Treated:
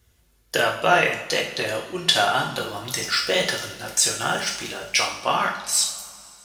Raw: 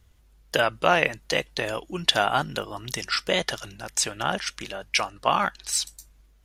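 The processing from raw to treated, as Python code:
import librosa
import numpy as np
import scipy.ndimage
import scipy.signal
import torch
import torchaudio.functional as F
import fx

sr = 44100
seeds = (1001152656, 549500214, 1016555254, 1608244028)

y = fx.law_mismatch(x, sr, coded='mu', at=(2.62, 5.19))
y = scipy.signal.sosfilt(scipy.signal.butter(2, 50.0, 'highpass', fs=sr, output='sos'), y)
y = fx.high_shelf(y, sr, hz=5000.0, db=6.5)
y = fx.rev_double_slope(y, sr, seeds[0], early_s=0.55, late_s=2.8, knee_db=-19, drr_db=-1.5)
y = y * 10.0 ** (-2.0 / 20.0)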